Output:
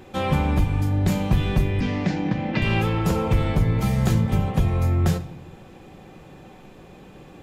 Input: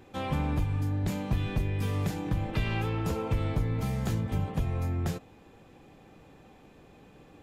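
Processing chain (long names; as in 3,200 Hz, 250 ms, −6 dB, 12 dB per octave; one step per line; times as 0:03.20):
0:01.80–0:02.62: loudspeaker in its box 150–5,300 Hz, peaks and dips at 260 Hz +9 dB, 410 Hz −5 dB, 1,200 Hz −6 dB, 1,900 Hz +4 dB, 3,500 Hz −4 dB
rectangular room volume 2,800 cubic metres, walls furnished, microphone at 1 metre
level +8.5 dB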